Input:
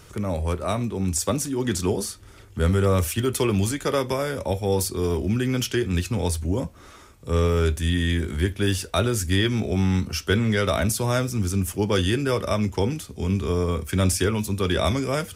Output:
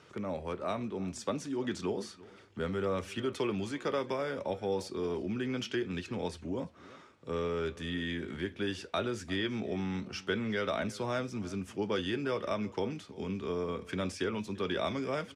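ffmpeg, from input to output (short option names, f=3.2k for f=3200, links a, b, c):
-filter_complex "[0:a]acompressor=threshold=-26dB:ratio=1.5,highpass=190,lowpass=4k,asplit=2[a][b];[b]adelay=344,volume=-20dB,highshelf=f=4k:g=-7.74[c];[a][c]amix=inputs=2:normalize=0,volume=-6dB"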